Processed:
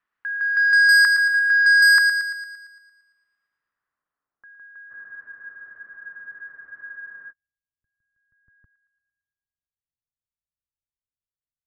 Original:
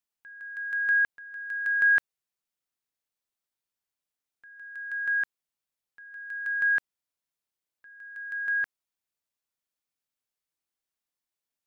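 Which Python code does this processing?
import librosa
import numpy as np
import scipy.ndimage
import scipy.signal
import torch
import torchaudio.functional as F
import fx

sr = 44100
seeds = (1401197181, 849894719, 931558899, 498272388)

p1 = fx.filter_sweep_lowpass(x, sr, from_hz=2200.0, to_hz=100.0, start_s=3.47, end_s=6.56, q=1.1)
p2 = fx.rider(p1, sr, range_db=3, speed_s=2.0)
p3 = p1 + (p2 * 10.0 ** (0.5 / 20.0))
p4 = fx.band_shelf(p3, sr, hz=1400.0, db=9.5, octaves=1.1)
p5 = 10.0 ** (-10.0 / 20.0) * np.tanh(p4 / 10.0 ** (-10.0 / 20.0))
p6 = p5 + fx.echo_wet_highpass(p5, sr, ms=114, feedback_pct=55, hz=1800.0, wet_db=-7.0, dry=0)
y = fx.spec_freeze(p6, sr, seeds[0], at_s=4.92, hold_s=2.38)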